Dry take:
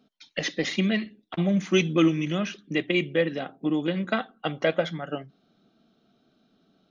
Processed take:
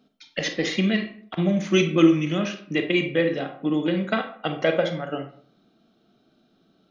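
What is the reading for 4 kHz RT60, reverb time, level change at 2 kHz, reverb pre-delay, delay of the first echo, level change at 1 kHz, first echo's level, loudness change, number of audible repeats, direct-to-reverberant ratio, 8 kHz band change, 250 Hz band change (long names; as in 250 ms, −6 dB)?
0.35 s, 0.55 s, +2.0 dB, 29 ms, no echo audible, +2.5 dB, no echo audible, +3.0 dB, no echo audible, 6.0 dB, can't be measured, +3.0 dB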